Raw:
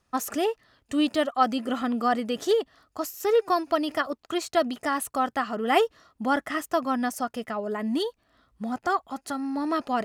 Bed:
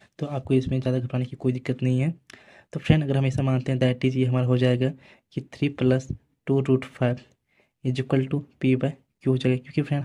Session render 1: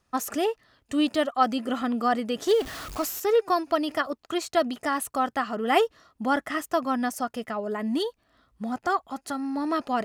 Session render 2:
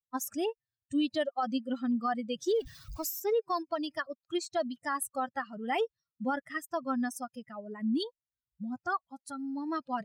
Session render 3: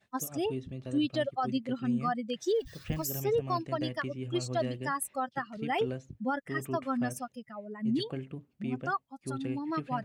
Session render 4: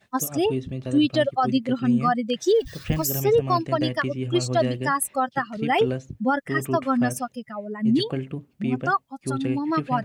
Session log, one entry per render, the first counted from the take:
2.47–3.20 s: jump at every zero crossing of -32 dBFS
expander on every frequency bin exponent 2; peak limiter -22 dBFS, peak gain reduction 11.5 dB
add bed -16 dB
trim +9.5 dB

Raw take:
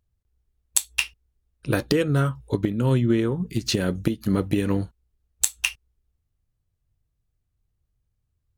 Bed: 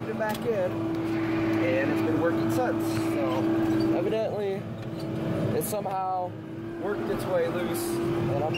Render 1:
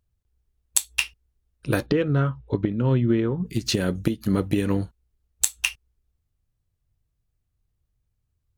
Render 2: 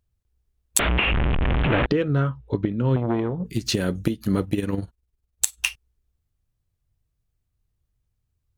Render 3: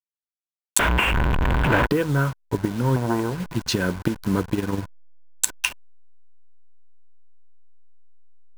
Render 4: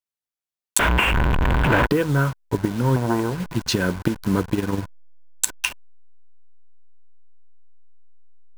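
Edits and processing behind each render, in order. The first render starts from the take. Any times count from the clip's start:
1.86–3.45 s: distance through air 240 m
0.79–1.86 s: one-bit delta coder 16 kbps, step -14 dBFS; 2.96–3.48 s: transformer saturation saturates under 550 Hz; 4.44–5.58 s: AM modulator 20 Hz, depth 45%
send-on-delta sampling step -32 dBFS; small resonant body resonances 990/1500 Hz, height 10 dB, ringing for 20 ms
trim +1.5 dB; peak limiter -3 dBFS, peak gain reduction 2.5 dB

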